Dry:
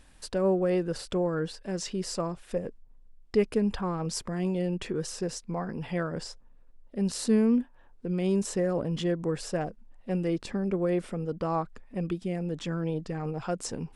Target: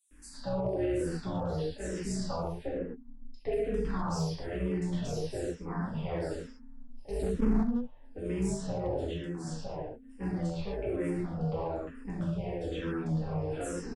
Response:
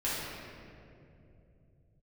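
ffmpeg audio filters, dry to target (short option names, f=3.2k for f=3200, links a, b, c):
-filter_complex "[0:a]asettb=1/sr,asplit=3[a][b][c];[a]atrim=end=2.594[d];[b]atrim=start=2.59:end=3.54,asetpts=PTS-STARTPTS,afade=t=in:d=0.004:c=qsin,afade=t=out:st=0.946:d=0.004:c=qsin,highshelf=f=5.6k:g=-11[e];[c]atrim=start=3.536[f];[d][e]acrossfade=d=0.004:c1=hsin:c2=qsin[g];[g][f]acrossfade=d=0.004:c1=qsin:c2=hsin,asettb=1/sr,asplit=3[h][i][j];[h]atrim=end=8.914[k];[i]atrim=start=8.91:end=9.65,asetpts=PTS-STARTPTS,afade=t=in:d=0.004:c=qsin,afade=t=out:st=0.736:d=0.004:c=qsin,acompressor=threshold=-33dB:ratio=6[l];[j]atrim=start=9.646[m];[k][l]acrossfade=d=0.004:c1=hsin:c2=qsin[n];[n][m]acrossfade=d=0.004:c1=qsin:c2=hsin,tremolo=f=250:d=0.824[o];[1:a]atrim=start_sample=2205,afade=t=out:st=0.21:d=0.01,atrim=end_sample=9702[p];[o][p]afir=irnorm=-1:irlink=0,alimiter=limit=-18.5dB:level=0:latency=1:release=92,acrossover=split=370|3000[q][r][s];[r]acompressor=threshold=-29dB:ratio=6[t];[q][t][s]amix=inputs=3:normalize=0,asettb=1/sr,asplit=3[u][v][w];[u]atrim=end=7.114[x];[v]atrim=start=7.11:end=7.52,asetpts=PTS-STARTPTS,afade=t=in:d=0.004:c=qsin,afade=t=out:st=0.406:d=0.004:c=qsin,tiltshelf=f=860:g=9.5[y];[w]atrim=start=7.516[z];[x][y]acrossfade=d=0.004:c1=hsin:c2=qsin[aa];[aa][z]acrossfade=d=0.004:c1=qsin:c2=hsin,acrossover=split=4900[ab][ac];[ab]adelay=110[ad];[ad][ac]amix=inputs=2:normalize=0,asoftclip=type=hard:threshold=-20dB,asplit=2[ae][af];[af]afreqshift=-1.1[ag];[ae][ag]amix=inputs=2:normalize=1,volume=-1.5dB"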